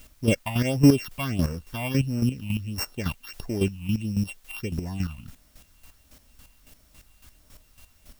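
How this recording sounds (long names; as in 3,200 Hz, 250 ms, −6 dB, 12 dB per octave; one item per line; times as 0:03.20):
a buzz of ramps at a fixed pitch in blocks of 16 samples
phaser sweep stages 6, 1.5 Hz, lowest notch 410–3,300 Hz
a quantiser's noise floor 10 bits, dither triangular
chopped level 3.6 Hz, depth 65%, duty 25%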